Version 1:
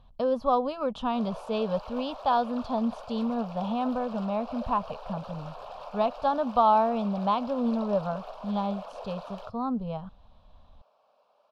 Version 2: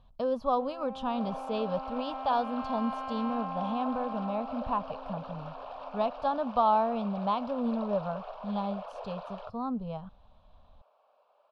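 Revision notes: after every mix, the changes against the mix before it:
speech −3.5 dB
first sound: unmuted
second sound: add band-pass filter 380–3,200 Hz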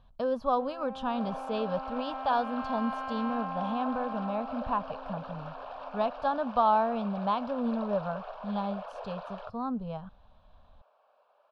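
master: add parametric band 1,600 Hz +7 dB 0.38 octaves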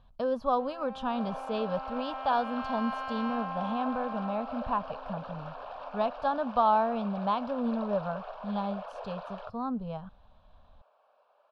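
first sound: add spectral tilt +3 dB per octave

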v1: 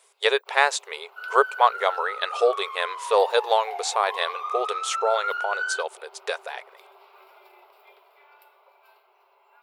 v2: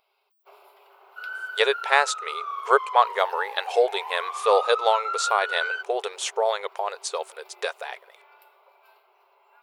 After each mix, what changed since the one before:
speech: entry +1.35 s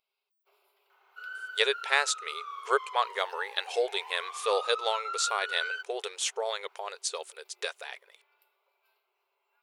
first sound −9.5 dB
master: add parametric band 770 Hz −11 dB 2.1 octaves

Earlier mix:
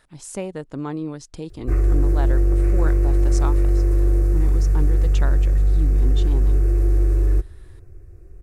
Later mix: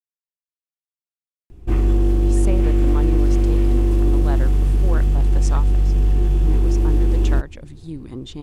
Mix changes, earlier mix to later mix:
speech: entry +2.10 s
background: remove phaser with its sweep stopped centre 870 Hz, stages 6

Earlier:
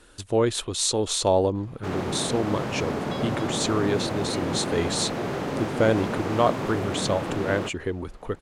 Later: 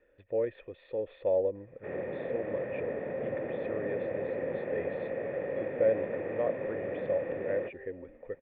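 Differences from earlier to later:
first sound +4.5 dB
second sound: entry +2.45 s
master: add formant resonators in series e

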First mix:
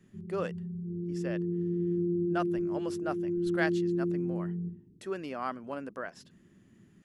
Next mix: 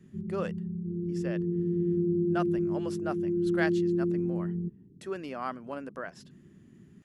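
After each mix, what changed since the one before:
background +7.0 dB
reverb: off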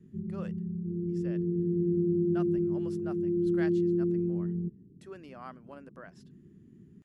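speech −10.0 dB

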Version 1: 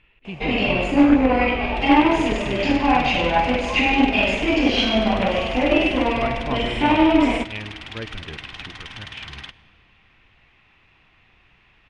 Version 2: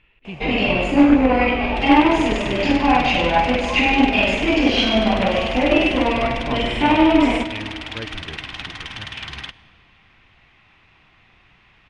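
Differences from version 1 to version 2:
first sound: send +10.0 dB
second sound +4.5 dB

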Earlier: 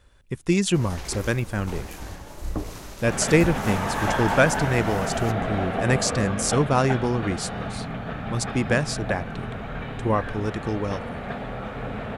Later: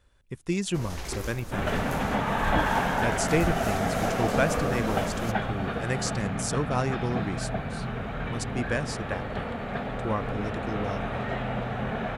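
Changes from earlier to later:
speech −7.0 dB
second sound: entry −1.55 s

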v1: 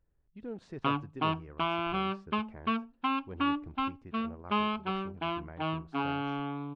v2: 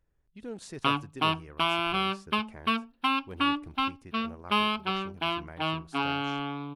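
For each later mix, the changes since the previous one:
master: remove head-to-tape spacing loss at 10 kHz 31 dB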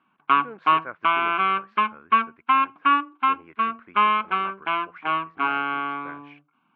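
background: entry −0.55 s
master: add loudspeaker in its box 250–2,700 Hz, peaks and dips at 1,100 Hz +10 dB, 1,500 Hz +10 dB, 2,200 Hz +7 dB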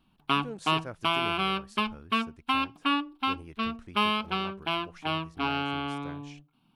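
master: remove loudspeaker in its box 250–2,700 Hz, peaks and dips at 1,100 Hz +10 dB, 1,500 Hz +10 dB, 2,200 Hz +7 dB

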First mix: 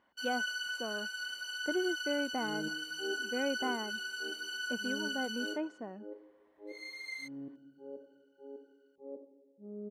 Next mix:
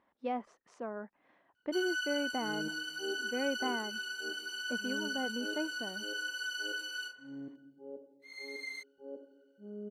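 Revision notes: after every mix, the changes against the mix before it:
first sound: entry +1.55 s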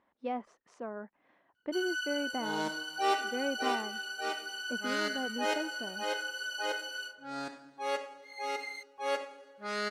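second sound: remove inverse Chebyshev low-pass filter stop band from 1,700 Hz, stop band 70 dB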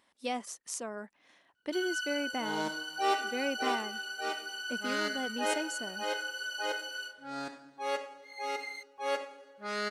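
speech: remove low-pass filter 1,400 Hz 12 dB per octave

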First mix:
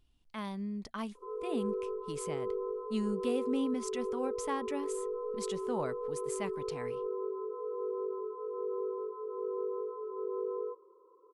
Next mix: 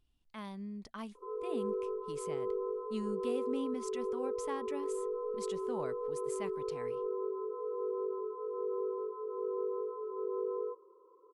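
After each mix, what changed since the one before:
speech −5.0 dB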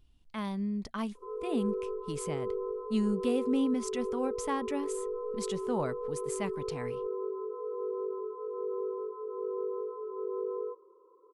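speech +7.0 dB
master: add low-shelf EQ 230 Hz +5 dB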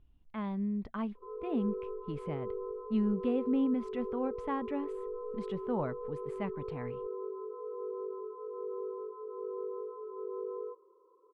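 background: add low-shelf EQ 420 Hz −6 dB
master: add high-frequency loss of the air 500 metres

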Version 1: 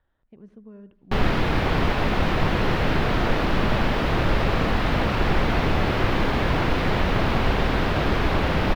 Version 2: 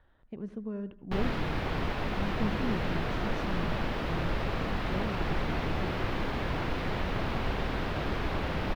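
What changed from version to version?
speech +7.5 dB
background −10.0 dB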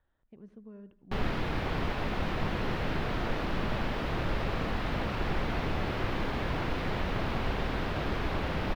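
speech −11.5 dB

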